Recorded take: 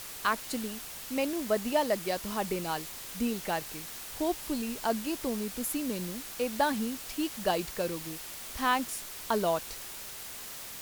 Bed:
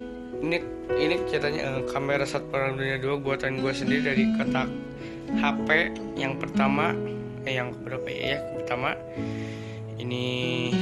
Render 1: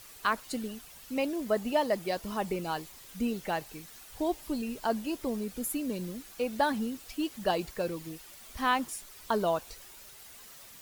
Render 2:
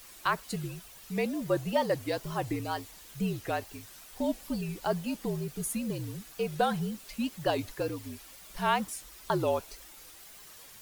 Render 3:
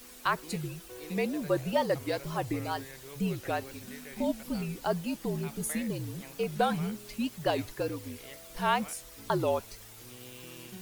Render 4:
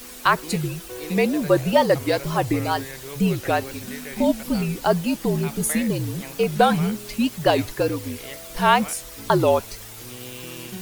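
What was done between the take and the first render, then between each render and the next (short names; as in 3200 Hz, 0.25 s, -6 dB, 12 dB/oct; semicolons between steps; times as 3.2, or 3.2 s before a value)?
denoiser 10 dB, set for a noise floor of -43 dBFS
frequency shift -58 Hz; wow and flutter 130 cents
add bed -21.5 dB
gain +10.5 dB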